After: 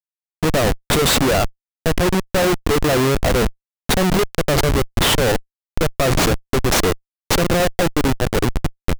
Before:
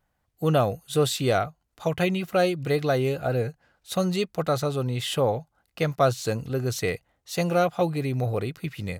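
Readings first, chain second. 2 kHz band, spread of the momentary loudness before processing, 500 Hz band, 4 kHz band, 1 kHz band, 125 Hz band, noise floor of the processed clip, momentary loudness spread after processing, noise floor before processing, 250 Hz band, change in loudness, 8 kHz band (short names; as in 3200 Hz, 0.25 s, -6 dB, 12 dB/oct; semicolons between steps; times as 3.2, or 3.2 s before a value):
+11.0 dB, 8 LU, +5.5 dB, +12.0 dB, +6.5 dB, +5.5 dB, under -85 dBFS, 8 LU, -75 dBFS, +8.0 dB, +7.5 dB, +13.5 dB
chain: HPF 210 Hz 12 dB/oct; high shelf 5800 Hz +11 dB; in parallel at +1 dB: limiter -18.5 dBFS, peak gain reduction 11 dB; on the sum: Schmitt trigger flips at -19.5 dBFS; gain +7 dB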